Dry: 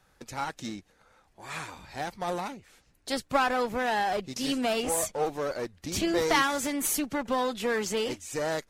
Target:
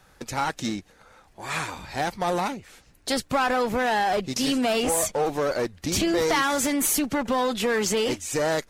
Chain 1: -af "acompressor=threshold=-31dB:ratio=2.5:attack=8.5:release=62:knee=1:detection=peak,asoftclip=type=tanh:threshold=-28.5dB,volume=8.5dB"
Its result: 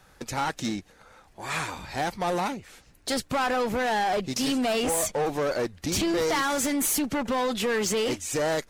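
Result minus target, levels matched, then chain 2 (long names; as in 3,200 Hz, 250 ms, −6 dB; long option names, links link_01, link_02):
soft clipping: distortion +13 dB
-af "acompressor=threshold=-31dB:ratio=2.5:attack=8.5:release=62:knee=1:detection=peak,asoftclip=type=tanh:threshold=-19dB,volume=8.5dB"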